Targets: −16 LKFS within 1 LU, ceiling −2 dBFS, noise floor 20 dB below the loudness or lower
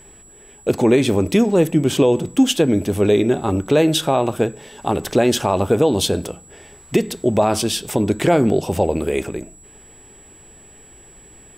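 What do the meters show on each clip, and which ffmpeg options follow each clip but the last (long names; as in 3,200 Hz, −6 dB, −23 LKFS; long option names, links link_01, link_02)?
interfering tone 7,800 Hz; level of the tone −45 dBFS; integrated loudness −18.5 LKFS; sample peak −5.5 dBFS; target loudness −16.0 LKFS
→ -af "bandreject=frequency=7800:width=30"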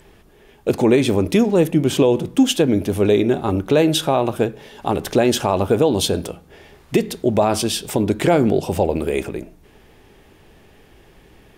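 interfering tone none found; integrated loudness −18.5 LKFS; sample peak −5.5 dBFS; target loudness −16.0 LKFS
→ -af "volume=2.5dB"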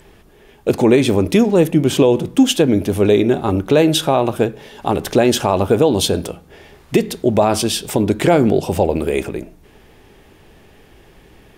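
integrated loudness −16.0 LKFS; sample peak −3.0 dBFS; background noise floor −48 dBFS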